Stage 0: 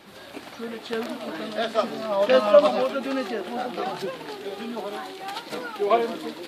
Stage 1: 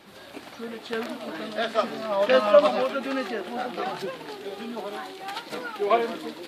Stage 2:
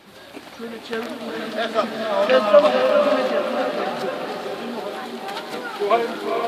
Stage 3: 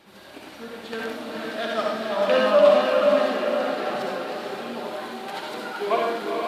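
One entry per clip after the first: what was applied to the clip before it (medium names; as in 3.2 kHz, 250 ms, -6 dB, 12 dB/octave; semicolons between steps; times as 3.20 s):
dynamic bell 1.8 kHz, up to +4 dB, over -37 dBFS, Q 0.92; trim -2 dB
echo that smears into a reverb 462 ms, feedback 48%, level -4 dB; trim +3 dB
reverberation RT60 0.55 s, pre-delay 53 ms, DRR -1 dB; trim -6 dB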